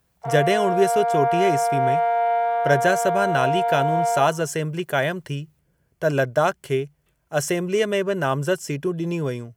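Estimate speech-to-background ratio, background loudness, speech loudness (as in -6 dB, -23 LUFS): -1.5 dB, -22.0 LUFS, -23.5 LUFS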